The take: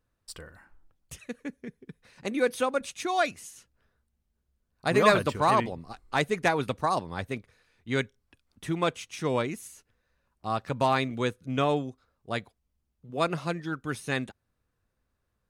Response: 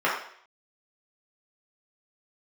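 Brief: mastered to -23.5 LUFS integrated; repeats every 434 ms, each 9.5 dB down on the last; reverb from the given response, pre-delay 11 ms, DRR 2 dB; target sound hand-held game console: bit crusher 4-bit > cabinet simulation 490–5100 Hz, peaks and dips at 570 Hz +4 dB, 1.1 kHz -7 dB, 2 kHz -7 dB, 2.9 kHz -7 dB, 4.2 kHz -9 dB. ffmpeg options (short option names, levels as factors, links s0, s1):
-filter_complex "[0:a]aecho=1:1:434|868|1302|1736:0.335|0.111|0.0365|0.012,asplit=2[s0][s1];[1:a]atrim=start_sample=2205,adelay=11[s2];[s1][s2]afir=irnorm=-1:irlink=0,volume=0.119[s3];[s0][s3]amix=inputs=2:normalize=0,acrusher=bits=3:mix=0:aa=0.000001,highpass=490,equalizer=f=570:t=q:w=4:g=4,equalizer=f=1100:t=q:w=4:g=-7,equalizer=f=2000:t=q:w=4:g=-7,equalizer=f=2900:t=q:w=4:g=-7,equalizer=f=4200:t=q:w=4:g=-9,lowpass=f=5100:w=0.5412,lowpass=f=5100:w=1.3066,volume=1.88"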